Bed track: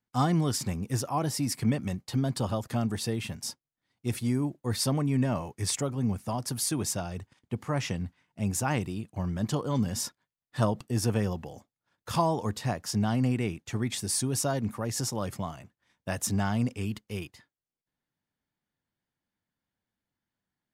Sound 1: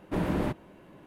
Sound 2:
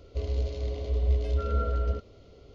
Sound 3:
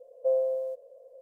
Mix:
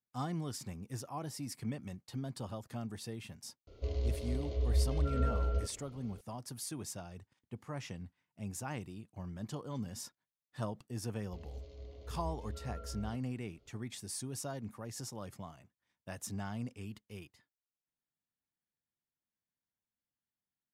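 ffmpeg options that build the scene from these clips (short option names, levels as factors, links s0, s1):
-filter_complex "[2:a]asplit=2[s0][s1];[0:a]volume=0.237[s2];[s0]atrim=end=2.54,asetpts=PTS-STARTPTS,volume=0.562,afade=t=in:d=0.004:c=hsin,afade=t=out:st=2.536:d=0.004:c=hsin,adelay=3670[s3];[s1]atrim=end=2.54,asetpts=PTS-STARTPTS,volume=0.133,afade=t=in:d=0.004:c=hsin,afade=t=out:st=2.536:d=0.004:c=hsin,adelay=11170[s4];[s2][s3][s4]amix=inputs=3:normalize=0"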